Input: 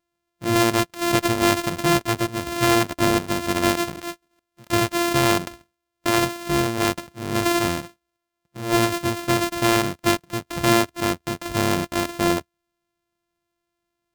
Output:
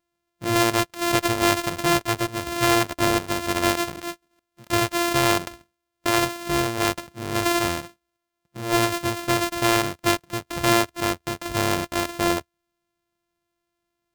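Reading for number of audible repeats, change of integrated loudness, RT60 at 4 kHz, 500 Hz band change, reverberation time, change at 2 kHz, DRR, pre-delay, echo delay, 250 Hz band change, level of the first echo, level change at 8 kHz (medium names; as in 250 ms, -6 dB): no echo, -1.0 dB, no reverb, -1.5 dB, no reverb, 0.0 dB, no reverb, no reverb, no echo, -3.0 dB, no echo, 0.0 dB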